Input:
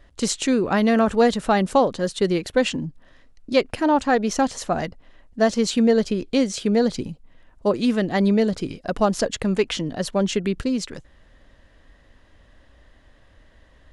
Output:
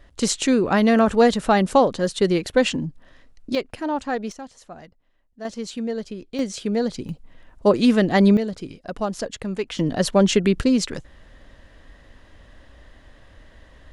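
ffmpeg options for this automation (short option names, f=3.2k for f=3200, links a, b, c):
-af "asetnsamples=n=441:p=0,asendcmd='3.55 volume volume -6.5dB;4.32 volume volume -17dB;5.45 volume volume -10dB;6.39 volume volume -3.5dB;7.09 volume volume 4dB;8.37 volume volume -6dB;9.79 volume volume 5dB',volume=1.5dB"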